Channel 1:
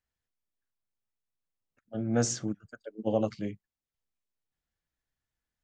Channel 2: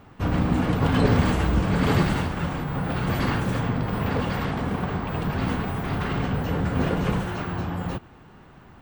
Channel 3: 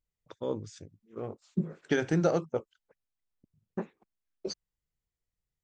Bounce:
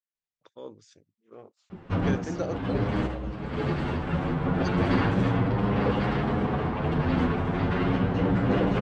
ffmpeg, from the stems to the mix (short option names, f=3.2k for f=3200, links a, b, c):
-filter_complex "[0:a]highpass=f=1.2k:p=1,volume=-10.5dB,asplit=2[a][b];[1:a]asplit=2[c][d];[d]adelay=8.6,afreqshift=0.34[e];[c][e]amix=inputs=2:normalize=1,adelay=1700,volume=1.5dB[f];[2:a]aemphasis=mode=production:type=bsi,adelay=150,volume=-7dB[g];[b]apad=whole_len=463873[h];[f][h]sidechaincompress=threshold=-52dB:ratio=8:attack=7.7:release=1120[i];[a][i][g]amix=inputs=3:normalize=0,lowpass=4.3k,adynamicequalizer=threshold=0.0126:dfrequency=360:dqfactor=0.73:tfrequency=360:tqfactor=0.73:attack=5:release=100:ratio=0.375:range=2.5:mode=boostabove:tftype=bell"